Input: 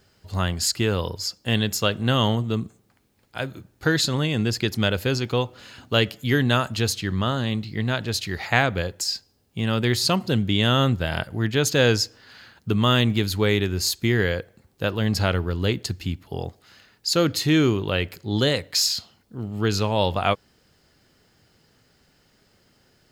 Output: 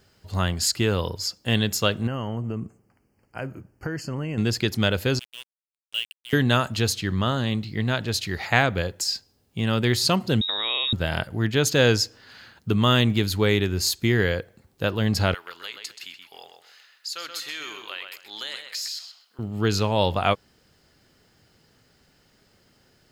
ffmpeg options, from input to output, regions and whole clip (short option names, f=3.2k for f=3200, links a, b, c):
-filter_complex "[0:a]asettb=1/sr,asplit=3[a][b][c];[a]atrim=end=2.074[d];[b]atrim=start=2.07:end=4.38,asetpts=PTS-STARTPTS,afade=t=in:d=0.004:c=qsin,afade=t=out:st=2.306:d=0.004:c=qsin,acompressor=threshold=-24dB:ratio=10:attack=3.2:release=140:knee=1:detection=peak,asuperstop=centerf=3700:order=12:qfactor=2.8,highshelf=f=2.2k:g=-8.5[e];[c]atrim=start=4.376[f];[d][e]acrossfade=d=0.004:c1=hsin:c2=qsin[g];[g][f]acrossfade=d=0.004:c1=qsin:c2=hsin,asettb=1/sr,asplit=3[h][i][j];[h]atrim=end=5.194[k];[i]atrim=start=5.19:end=6.33,asetpts=PTS-STARTPTS,afade=t=in:d=0.004:c=qsin,afade=t=out:st=1.136:d=0.004:c=qsin,bandpass=f=2.9k:t=q:w=8.8,acrusher=bits=5:mix=0:aa=0.5[l];[j]atrim=start=6.326[m];[k][l]acrossfade=d=0.004:c1=hsin:c2=qsin[n];[n][m]acrossfade=d=0.004:c1=qsin:c2=hsin,asettb=1/sr,asplit=3[o][p][q];[o]atrim=end=10.414[r];[p]atrim=start=10.41:end=10.93,asetpts=PTS-STARTPTS,afade=t=in:d=0.004:c=qsin,afade=t=out:st=0.516:d=0.004:c=qsin,acompressor=threshold=-22dB:ratio=5:attack=3.2:release=140:knee=1:detection=peak,lowpass=f=3.3k:t=q:w=0.5098,lowpass=f=3.3k:t=q:w=0.6013,lowpass=f=3.3k:t=q:w=0.9,lowpass=f=3.3k:t=q:w=2.563,afreqshift=-3900[s];[q]atrim=start=10.926[t];[r][s]acrossfade=d=0.004:c1=hsin:c2=qsin[u];[u][t]acrossfade=d=0.004:c1=qsin:c2=hsin,asettb=1/sr,asplit=3[v][w][x];[v]atrim=end=15.344[y];[w]atrim=start=15.34:end=19.39,asetpts=PTS-STARTPTS,afade=t=in:d=0.004:c=qsin,afade=t=out:st=4.046:d=0.004:c=qsin,highpass=1.3k,acompressor=threshold=-31dB:ratio=3:attack=3.2:release=140:knee=1:detection=peak,asplit=2[z][aa];[aa]adelay=128,lowpass=f=4k:p=1,volume=-5.5dB,asplit=2[ab][ac];[ac]adelay=128,lowpass=f=4k:p=1,volume=0.27,asplit=2[ad][ae];[ae]adelay=128,lowpass=f=4k:p=1,volume=0.27,asplit=2[af][ag];[ag]adelay=128,lowpass=f=4k:p=1,volume=0.27[ah];[z][ab][ad][af][ah]amix=inputs=5:normalize=0,atrim=end_sample=178605[ai];[x]atrim=start=19.386[aj];[y][ai]acrossfade=d=0.004:c1=hsin:c2=qsin[ak];[ak][aj]acrossfade=d=0.004:c1=qsin:c2=hsin"